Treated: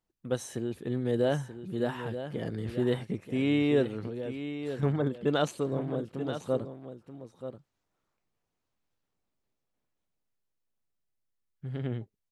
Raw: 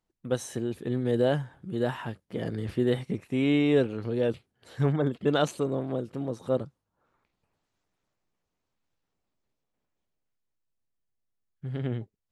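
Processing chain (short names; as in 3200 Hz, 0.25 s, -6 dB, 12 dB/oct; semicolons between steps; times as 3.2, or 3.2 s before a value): 4.06–4.83 compressor 4:1, threshold -32 dBFS, peak gain reduction 9 dB; echo 0.932 s -10.5 dB; gain -2.5 dB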